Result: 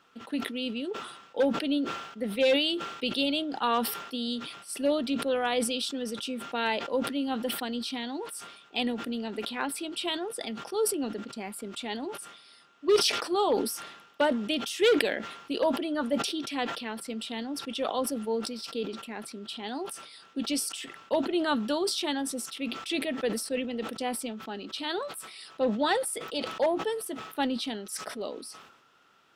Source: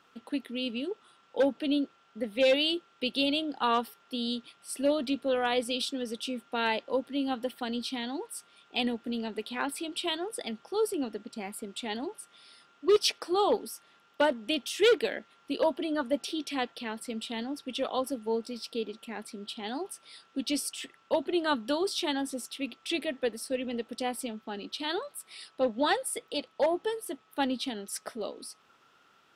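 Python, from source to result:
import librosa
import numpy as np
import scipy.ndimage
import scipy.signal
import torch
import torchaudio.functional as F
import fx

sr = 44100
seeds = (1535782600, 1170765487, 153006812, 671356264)

y = fx.sustainer(x, sr, db_per_s=63.0)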